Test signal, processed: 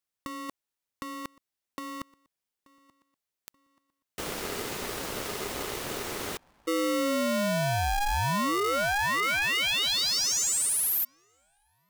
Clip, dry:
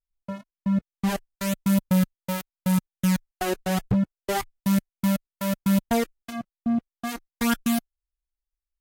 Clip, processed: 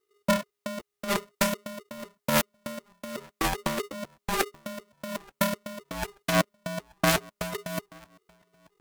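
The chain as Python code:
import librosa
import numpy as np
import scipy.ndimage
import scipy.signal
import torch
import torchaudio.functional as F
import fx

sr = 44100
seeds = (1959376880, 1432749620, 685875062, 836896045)

p1 = fx.over_compress(x, sr, threshold_db=-29.0, ratio=-0.5)
p2 = p1 + fx.echo_banded(p1, sr, ms=881, feedback_pct=43, hz=520.0, wet_db=-23, dry=0)
p3 = p2 * np.sign(np.sin(2.0 * np.pi * 410.0 * np.arange(len(p2)) / sr))
y = p3 * 10.0 ** (2.5 / 20.0)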